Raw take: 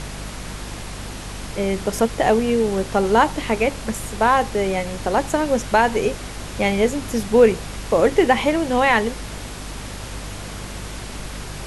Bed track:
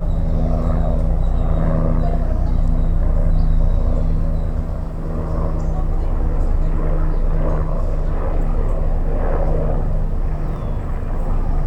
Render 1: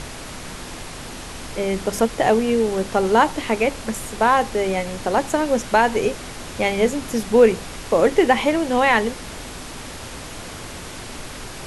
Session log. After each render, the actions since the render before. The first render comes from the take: notches 50/100/150/200 Hz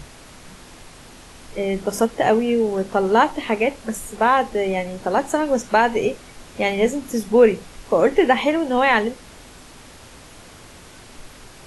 noise print and reduce 9 dB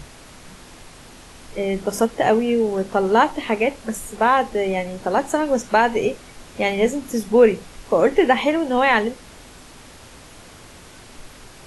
2.04–2.64 short-mantissa float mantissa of 8-bit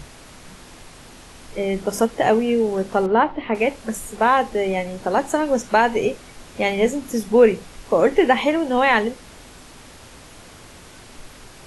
3.06–3.55 air absorption 380 m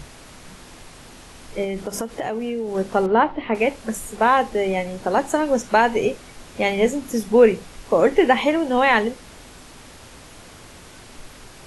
1.64–2.75 compressor 5:1, threshold -23 dBFS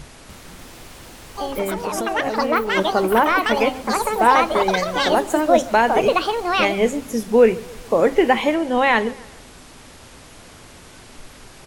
echoes that change speed 0.295 s, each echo +6 st, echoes 2; feedback echo 0.14 s, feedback 49%, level -21.5 dB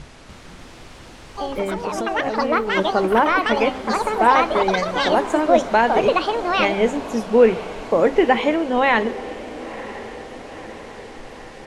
air absorption 67 m; diffused feedback echo 0.977 s, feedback 61%, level -16 dB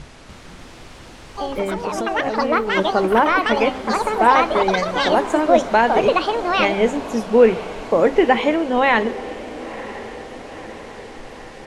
gain +1 dB

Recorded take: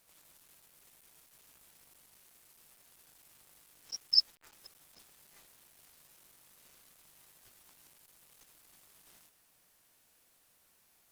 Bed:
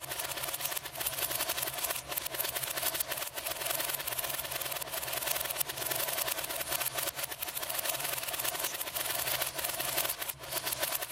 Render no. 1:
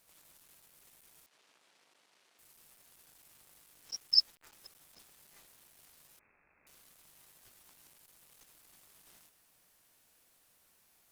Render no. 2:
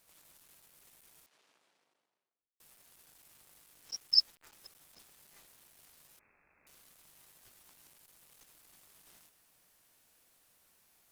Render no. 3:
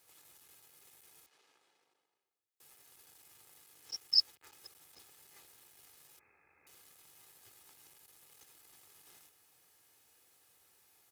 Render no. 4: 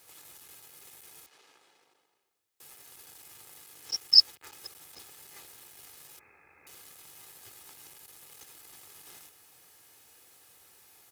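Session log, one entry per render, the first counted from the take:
1.26–2.39 BPF 310–4800 Hz; 6.19–6.67 inverted band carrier 2600 Hz
1.13–2.6 studio fade out
HPF 70 Hz 24 dB/oct; comb 2.4 ms, depth 48%
gain +9.5 dB

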